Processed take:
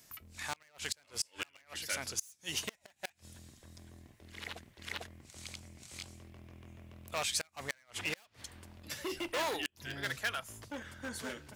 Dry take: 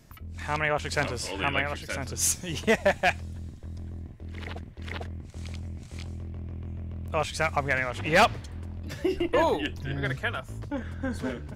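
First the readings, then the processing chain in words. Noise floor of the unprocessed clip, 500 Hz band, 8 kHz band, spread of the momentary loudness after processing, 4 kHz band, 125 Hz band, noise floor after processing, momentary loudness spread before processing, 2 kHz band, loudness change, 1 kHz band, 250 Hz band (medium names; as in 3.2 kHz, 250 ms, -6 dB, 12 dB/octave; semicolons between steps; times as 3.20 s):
-45 dBFS, -16.0 dB, -6.5 dB, 19 LU, -4.0 dB, -18.5 dB, -70 dBFS, 16 LU, -11.0 dB, -11.0 dB, -14.5 dB, -15.0 dB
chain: hard clipper -24.5 dBFS, distortion -7 dB; tilt EQ +3.5 dB/octave; inverted gate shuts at -15 dBFS, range -32 dB; trim -5.5 dB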